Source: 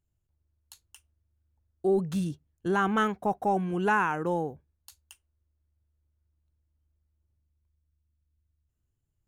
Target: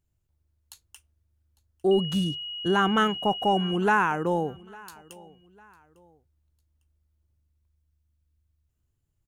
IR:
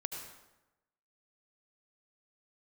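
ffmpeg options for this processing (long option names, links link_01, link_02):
-filter_complex "[0:a]asettb=1/sr,asplit=3[link_01][link_02][link_03];[link_01]atrim=end=1.914[link_04];[link_02]atrim=start=1.91:end=3.76,asetpts=PTS-STARTPTS,afade=type=in:duration=0.004:curve=qsin,afade=type=out:start_time=1.846:duration=0.004:curve=qsin,aeval=exprs='val(0)+0.0158*sin(2*PI*2900*n/s)':channel_layout=same[link_05];[link_03]atrim=start=3.756[link_06];[link_04][link_05]acrossfade=duration=0.004:curve1=hsin:curve2=qsin[link_07];[link_07][link_06]acrossfade=duration=0.004:curve1=qsin:curve2=hsin,aecho=1:1:852|1704:0.0668|0.0247,volume=3dB"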